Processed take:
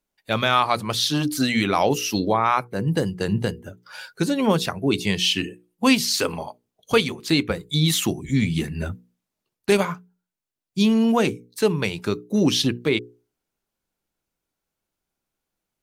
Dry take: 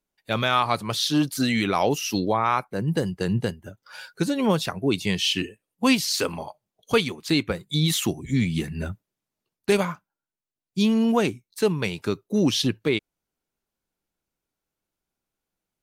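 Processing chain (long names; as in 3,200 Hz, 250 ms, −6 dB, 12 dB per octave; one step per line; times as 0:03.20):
mains-hum notches 60/120/180/240/300/360/420/480 Hz
level +2.5 dB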